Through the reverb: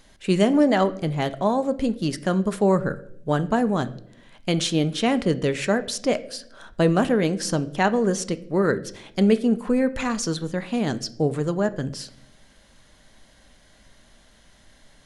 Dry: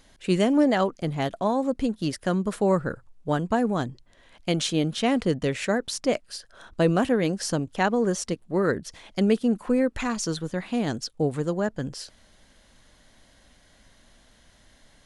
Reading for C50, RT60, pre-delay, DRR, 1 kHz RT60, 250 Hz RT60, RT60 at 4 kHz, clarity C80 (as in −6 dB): 17.5 dB, 0.70 s, 5 ms, 11.0 dB, 0.55 s, 1.1 s, 0.50 s, 21.0 dB